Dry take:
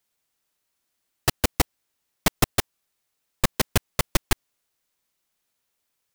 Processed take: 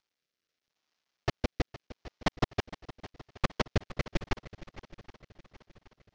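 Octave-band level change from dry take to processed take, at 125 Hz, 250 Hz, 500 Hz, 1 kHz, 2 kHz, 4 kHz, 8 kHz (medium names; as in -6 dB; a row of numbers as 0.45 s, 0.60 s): -6.0 dB, -6.0 dB, -5.5 dB, -7.0 dB, -8.5 dB, -11.5 dB, -22.5 dB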